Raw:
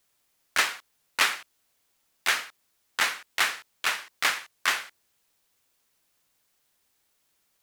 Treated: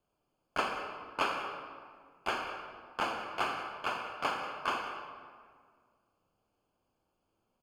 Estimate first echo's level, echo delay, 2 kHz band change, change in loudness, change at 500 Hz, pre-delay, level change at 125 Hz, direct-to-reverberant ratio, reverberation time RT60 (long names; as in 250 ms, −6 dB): −15.5 dB, 185 ms, −11.5 dB, −9.0 dB, +3.5 dB, 34 ms, can't be measured, 2.5 dB, 1.9 s